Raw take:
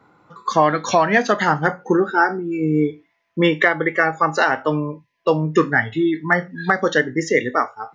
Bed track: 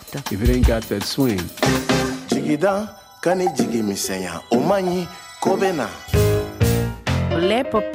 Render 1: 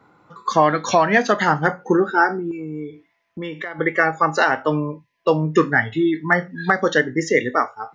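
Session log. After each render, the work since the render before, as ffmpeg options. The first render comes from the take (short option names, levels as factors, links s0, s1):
-filter_complex "[0:a]asettb=1/sr,asplit=3[s0][s1][s2];[s0]atrim=end=2.514[s3];[s1]atrim=start=2.51:end=3.79,asetpts=PTS-STARTPTS,afade=t=in:d=0.004:c=qsin,afade=t=out:st=1.276:d=0.004:c=qsin,acompressor=threshold=0.0316:ratio=3:attack=3.2:release=140:knee=1:detection=peak[s4];[s2]atrim=start=3.786[s5];[s3][s4]acrossfade=d=0.004:c1=hsin:c2=qsin[s6];[s6][s5]acrossfade=d=0.004:c1=qsin:c2=hsin"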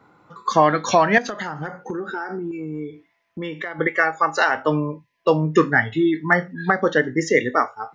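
-filter_complex "[0:a]asettb=1/sr,asplit=3[s0][s1][s2];[s0]atrim=end=1.184[s3];[s1]atrim=start=1.18:end=2.79,asetpts=PTS-STARTPTS,afade=t=in:d=0.004:c=qsin,afade=t=out:st=1.606:d=0.004:c=qsin,acompressor=threshold=0.0631:ratio=10:attack=3.2:release=140:knee=1:detection=peak[s4];[s2]atrim=start=2.786[s5];[s3][s4]acrossfade=d=0.004:c1=hsin:c2=qsin[s6];[s6][s5]acrossfade=d=0.004:c1=qsin:c2=hsin,asettb=1/sr,asplit=3[s7][s8][s9];[s7]atrim=end=3.874[s10];[s8]atrim=start=3.87:end=4.55,asetpts=PTS-STARTPTS,afade=t=in:d=0.004:c=qsin,afade=t=out:st=0.676:d=0.004:c=qsin,equalizer=f=80:w=0.32:g=-15[s11];[s9]atrim=start=4.546[s12];[s10][s11]acrossfade=d=0.004:c1=hsin:c2=qsin[s13];[s13][s12]acrossfade=d=0.004:c1=qsin:c2=hsin,asettb=1/sr,asplit=3[s14][s15][s16];[s14]atrim=end=6.534[s17];[s15]atrim=start=6.53:end=7.04,asetpts=PTS-STARTPTS,afade=t=in:d=0.004:c=qsin,afade=t=out:st=0.506:d=0.004:c=qsin,aemphasis=mode=reproduction:type=75kf[s18];[s16]atrim=start=7.036[s19];[s17][s18]acrossfade=d=0.004:c1=hsin:c2=qsin[s20];[s20][s19]acrossfade=d=0.004:c1=qsin:c2=hsin"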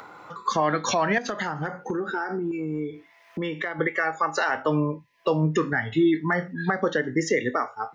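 -filter_complex "[0:a]acrossover=split=430[s0][s1];[s1]acompressor=mode=upward:threshold=0.02:ratio=2.5[s2];[s0][s2]amix=inputs=2:normalize=0,alimiter=limit=0.224:level=0:latency=1:release=139"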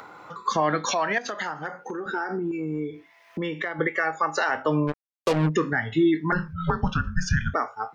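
-filter_complex "[0:a]asettb=1/sr,asplit=3[s0][s1][s2];[s0]atrim=end=0.854[s3];[s1]atrim=start=0.85:end=2.06,asetpts=PTS-STARTPTS,afade=t=in:d=0.004:c=qsin,afade=t=out:st=1.206:d=0.004:c=qsin,highpass=f=510:p=1[s4];[s2]atrim=start=2.056[s5];[s3][s4]acrossfade=d=0.004:c1=hsin:c2=qsin[s6];[s6][s5]acrossfade=d=0.004:c1=qsin:c2=hsin,asplit=3[s7][s8][s9];[s7]afade=t=out:st=4.87:d=0.02[s10];[s8]acrusher=bits=3:mix=0:aa=0.5,afade=t=in:st=4.87:d=0.02,afade=t=out:st=5.48:d=0.02[s11];[s9]afade=t=in:st=5.48:d=0.02[s12];[s10][s11][s12]amix=inputs=3:normalize=0,asettb=1/sr,asplit=3[s13][s14][s15];[s13]atrim=end=6.324[s16];[s14]atrim=start=6.32:end=7.54,asetpts=PTS-STARTPTS,afade=t=in:d=0.004:c=qsin,afade=t=out:st=1.216:d=0.004:c=qsin,afreqshift=-340[s17];[s15]atrim=start=7.536[s18];[s16][s17]acrossfade=d=0.004:c1=hsin:c2=qsin[s19];[s19][s18]acrossfade=d=0.004:c1=qsin:c2=hsin"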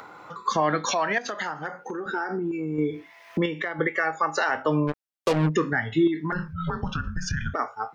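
-filter_complex "[0:a]asettb=1/sr,asplit=3[s0][s1][s2];[s0]atrim=end=2.784[s3];[s1]atrim=start=2.78:end=3.46,asetpts=PTS-STARTPTS,afade=t=in:d=0.004:c=qsin,afade=t=out:st=0.676:d=0.004:c=qsin,acontrast=47[s4];[s2]atrim=start=3.456[s5];[s3][s4]acrossfade=d=0.004:c1=hsin:c2=qsin[s6];[s6][s5]acrossfade=d=0.004:c1=qsin:c2=hsin,asettb=1/sr,asplit=3[s7][s8][s9];[s7]atrim=end=6.074[s10];[s8]atrim=start=6.07:end=7.59,asetpts=PTS-STARTPTS,afade=t=in:d=0.004:c=qsin,afade=t=out:st=1.516:d=0.004:c=qsin,acompressor=threshold=0.0708:ratio=6:attack=3.2:release=140:knee=1:detection=peak[s11];[s9]atrim=start=7.586[s12];[s10][s11]acrossfade=d=0.004:c1=hsin:c2=qsin[s13];[s13][s12]acrossfade=d=0.004:c1=qsin:c2=hsin"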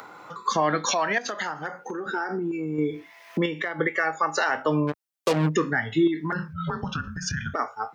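-af "highpass=100,highshelf=f=5300:g=5.5"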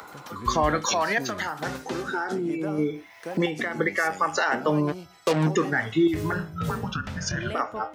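-filter_complex "[1:a]volume=0.141[s0];[0:a][s0]amix=inputs=2:normalize=0"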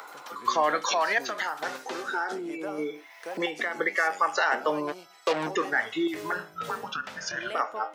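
-filter_complex "[0:a]acrossover=split=5800[s0][s1];[s1]acompressor=threshold=0.00355:ratio=4:attack=1:release=60[s2];[s0][s2]amix=inputs=2:normalize=0,highpass=480"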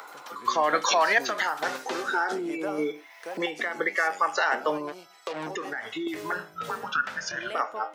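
-filter_complex "[0:a]asettb=1/sr,asplit=3[s0][s1][s2];[s0]atrim=end=4.774[s3];[s1]atrim=start=4.77:end=6.07,asetpts=PTS-STARTPTS,afade=t=in:d=0.004:c=qsin,afade=t=out:st=1.296:d=0.004:c=qsin,acompressor=threshold=0.0355:ratio=6:attack=3.2:release=140:knee=1:detection=peak[s4];[s2]atrim=start=6.066[s5];[s3][s4]acrossfade=d=0.004:c1=hsin:c2=qsin[s6];[s6][s5]acrossfade=d=0.004:c1=qsin:c2=hsin,asettb=1/sr,asplit=3[s7][s8][s9];[s7]atrim=end=6.814[s10];[s8]atrim=start=6.81:end=7.21,asetpts=PTS-STARTPTS,afade=t=in:d=0.004:c=qsin,afade=t=out:st=0.396:d=0.004:c=qsin,equalizer=f=1500:w=2.2:g=9[s11];[s9]atrim=start=7.206[s12];[s10][s11]acrossfade=d=0.004:c1=hsin:c2=qsin[s13];[s13][s12]acrossfade=d=0.004:c1=qsin:c2=hsin,asplit=3[s14][s15][s16];[s14]atrim=end=0.732[s17];[s15]atrim=start=0.728:end=2.922,asetpts=PTS-STARTPTS,volume=1.5[s18];[s16]atrim=start=2.918[s19];[s17][s18]acrossfade=d=0.004:c1=hsin:c2=hsin[s20];[s20][s19]acrossfade=d=0.004:c1=hsin:c2=hsin"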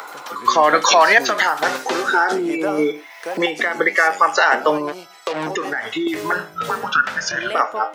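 -af "volume=3.16,alimiter=limit=0.794:level=0:latency=1"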